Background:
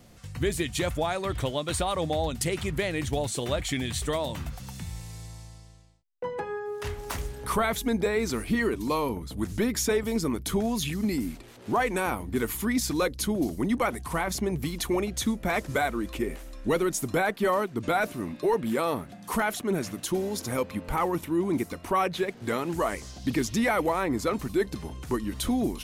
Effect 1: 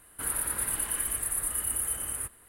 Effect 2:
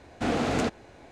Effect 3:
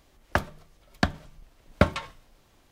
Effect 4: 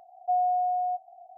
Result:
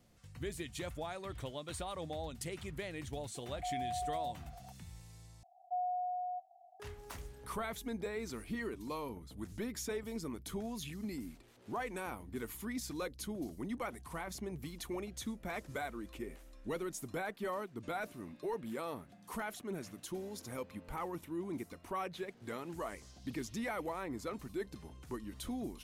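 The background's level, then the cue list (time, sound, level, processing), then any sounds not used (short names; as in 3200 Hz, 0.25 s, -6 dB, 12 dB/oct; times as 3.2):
background -14 dB
3.35 add 4 -7 dB + limiter -28.5 dBFS
5.43 replace with 4 -11.5 dB
not used: 1, 2, 3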